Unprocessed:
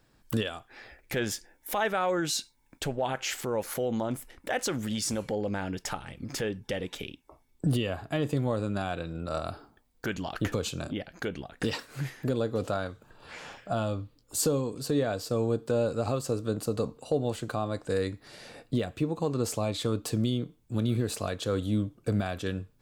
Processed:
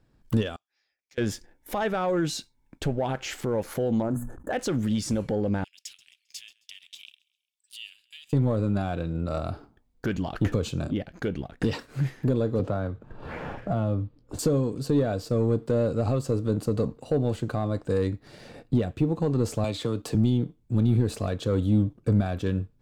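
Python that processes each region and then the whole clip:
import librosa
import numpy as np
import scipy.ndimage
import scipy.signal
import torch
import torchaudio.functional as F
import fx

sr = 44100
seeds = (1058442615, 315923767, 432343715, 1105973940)

y = fx.chain(x, sr, fx.bandpass_q(hz=5900.0, q=3.6),
    fx.air_absorb(metres=81.0), at=(0.56, 1.18))
y = fx.chain(y, sr, fx.brickwall_bandstop(low_hz=1800.0, high_hz=6200.0),
    fx.hum_notches(base_hz=60, count=4),
    fx.sustainer(db_per_s=72.0), at=(4.02, 4.53))
y = fx.chain(y, sr, fx.steep_highpass(hz=2600.0, slope=36),
    fx.echo_feedback(ms=133, feedback_pct=44, wet_db=-19.0), at=(5.64, 8.33))
y = fx.chain(y, sr, fx.lowpass(hz=1600.0, slope=6),
    fx.band_squash(depth_pct=70), at=(12.59, 14.39))
y = fx.chain(y, sr, fx.low_shelf(hz=320.0, db=-8.0),
    fx.band_squash(depth_pct=70), at=(19.64, 20.15))
y = fx.high_shelf(y, sr, hz=7900.0, db=-7.0)
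y = fx.leveller(y, sr, passes=1)
y = fx.low_shelf(y, sr, hz=460.0, db=10.0)
y = y * librosa.db_to_amplitude(-5.0)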